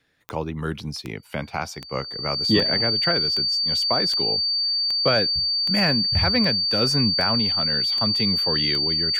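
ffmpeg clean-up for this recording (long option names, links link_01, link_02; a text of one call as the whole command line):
ffmpeg -i in.wav -af "adeclick=threshold=4,bandreject=frequency=4600:width=30" out.wav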